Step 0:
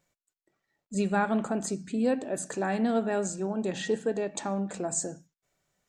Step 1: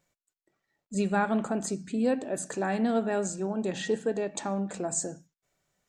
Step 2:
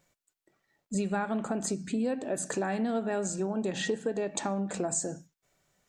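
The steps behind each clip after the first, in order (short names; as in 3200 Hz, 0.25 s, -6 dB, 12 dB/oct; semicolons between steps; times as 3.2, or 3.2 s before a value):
nothing audible
compressor 5:1, threshold -32 dBFS, peak gain reduction 10 dB; gain +4.5 dB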